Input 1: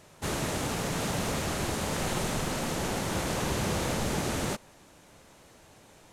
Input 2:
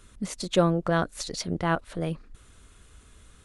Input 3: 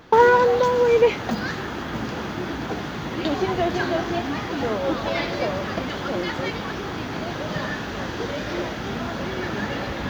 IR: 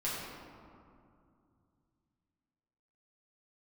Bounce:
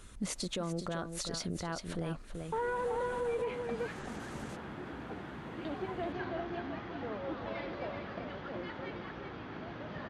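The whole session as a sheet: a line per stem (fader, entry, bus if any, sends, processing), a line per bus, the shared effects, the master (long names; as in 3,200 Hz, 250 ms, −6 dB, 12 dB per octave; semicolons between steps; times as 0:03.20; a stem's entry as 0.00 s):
−14.0 dB, 0.00 s, no send, no echo send, gate on every frequency bin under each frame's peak −30 dB strong; brickwall limiter −26 dBFS, peak gain reduction 8 dB; automatic ducking −17 dB, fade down 0.45 s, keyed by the second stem
+0.5 dB, 0.00 s, no send, echo send −10.5 dB, downward compressor, threshold −28 dBFS, peak gain reduction 12 dB
−15.5 dB, 2.40 s, no send, echo send −6 dB, low-pass filter 2,800 Hz 12 dB per octave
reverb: not used
echo: single-tap delay 383 ms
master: brickwall limiter −27 dBFS, peak gain reduction 9 dB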